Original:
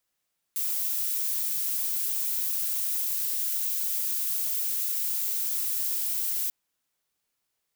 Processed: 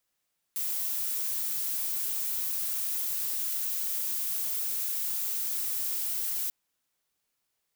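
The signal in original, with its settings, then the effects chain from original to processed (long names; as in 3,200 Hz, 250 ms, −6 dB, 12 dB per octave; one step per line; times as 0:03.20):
noise violet, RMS −28.5 dBFS 5.94 s
soft clipping −25.5 dBFS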